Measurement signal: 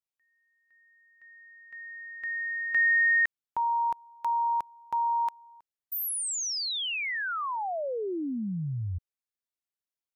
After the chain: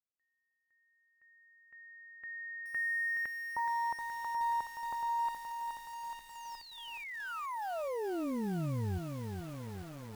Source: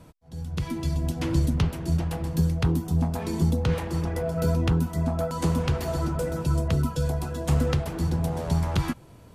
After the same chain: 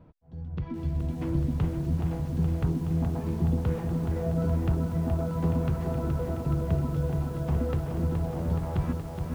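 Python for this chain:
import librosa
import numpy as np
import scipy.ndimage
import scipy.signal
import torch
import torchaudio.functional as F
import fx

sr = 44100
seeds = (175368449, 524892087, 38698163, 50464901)

y = fx.spacing_loss(x, sr, db_at_10k=43)
y = fx.echo_crushed(y, sr, ms=422, feedback_pct=80, bits=8, wet_db=-6.0)
y = y * librosa.db_to_amplitude(-3.0)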